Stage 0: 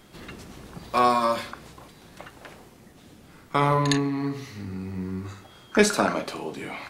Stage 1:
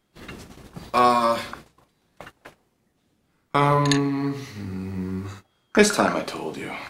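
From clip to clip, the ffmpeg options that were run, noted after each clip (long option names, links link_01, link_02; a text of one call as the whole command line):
ffmpeg -i in.wav -af "agate=range=-20dB:threshold=-42dB:ratio=16:detection=peak,volume=2.5dB" out.wav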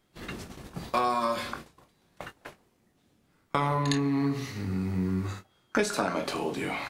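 ffmpeg -i in.wav -filter_complex "[0:a]acompressor=threshold=-25dB:ratio=4,asplit=2[link_01][link_02];[link_02]adelay=22,volume=-10.5dB[link_03];[link_01][link_03]amix=inputs=2:normalize=0" out.wav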